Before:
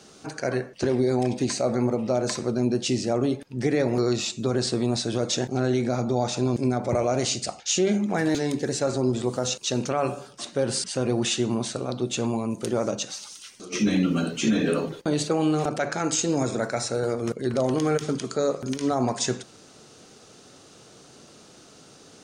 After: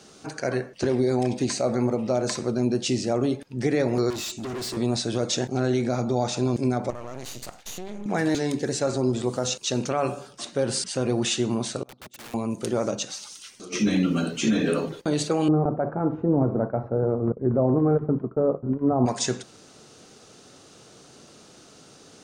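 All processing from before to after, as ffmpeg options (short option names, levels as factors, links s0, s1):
-filter_complex "[0:a]asettb=1/sr,asplit=3[s0][s1][s2];[s0]atrim=end=4.104[s3];[s1]atrim=start=4.1:end=4.77,asetpts=PTS-STARTPTS,afade=t=in:d=0.004:c=qsin,afade=t=out:st=0.666:d=0.004:c=qsin,highshelf=f=8800:g=4.5,aecho=1:1:3:0.47,atrim=end_sample=29547,asoftclip=type=hard:threshold=0.0316[s4];[s2]atrim=start=4.766[s5];[s3][s4]acrossfade=d=0.004:c1=hsin:c2=qsin[s6];[s6][s5]acrossfade=d=0.004:c1=qsin:c2=hsin,asettb=1/sr,asplit=3[s7][s8][s9];[s7]atrim=end=6.904[s10];[s8]atrim=start=6.9:end=8.06,asetpts=PTS-STARTPTS,afade=t=in:d=0.004:c=qsin,afade=t=out:st=1.156:d=0.004:c=qsin,bandreject=f=5200:w=8.3,acompressor=threshold=0.0355:ratio=10:attack=3.2:release=140:knee=1:detection=peak,aeval=exprs='max(val(0),0)':c=same[s11];[s9]atrim=start=8.056[s12];[s10][s11]acrossfade=d=0.004:c1=hsin:c2=qsin[s13];[s13][s12]acrossfade=d=0.004:c1=qsin:c2=hsin,asettb=1/sr,asplit=3[s14][s15][s16];[s14]atrim=end=11.834[s17];[s15]atrim=start=11.83:end=12.34,asetpts=PTS-STARTPTS,afade=t=in:d=0.004:c=qsin,afade=t=out:st=0.506:d=0.004:c=qsin,agate=range=0.0501:threshold=0.0447:ratio=16:release=100:detection=peak,acompressor=threshold=0.0141:ratio=2:attack=3.2:release=140:knee=1:detection=peak,aeval=exprs='(mod(70.8*val(0)+1,2)-1)/70.8':c=same[s18];[s16]atrim=start=12.336[s19];[s17][s18]acrossfade=d=0.004:c1=hsin:c2=qsin[s20];[s20][s19]acrossfade=d=0.004:c1=qsin:c2=hsin,asettb=1/sr,asplit=3[s21][s22][s23];[s21]atrim=end=15.484[s24];[s22]atrim=start=15.48:end=19.06,asetpts=PTS-STARTPTS,afade=t=in:d=0.004:c=qsin,afade=t=out:st=3.576:d=0.004:c=qsin,agate=range=0.0224:threshold=0.0316:ratio=3:release=100:detection=peak,lowpass=f=1100:w=0.5412,lowpass=f=1100:w=1.3066,lowshelf=f=260:g=7.5[s25];[s23]atrim=start=19.056[s26];[s24][s25]acrossfade=d=0.004:c1=hsin:c2=qsin[s27];[s27][s26]acrossfade=d=0.004:c1=qsin:c2=hsin"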